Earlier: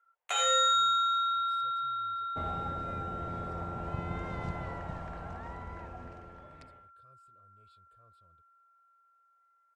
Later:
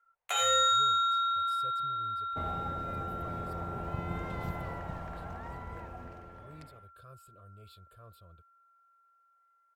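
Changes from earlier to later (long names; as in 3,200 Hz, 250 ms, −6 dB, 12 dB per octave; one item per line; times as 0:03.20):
speech +11.5 dB
master: remove low-pass filter 9,300 Hz 24 dB per octave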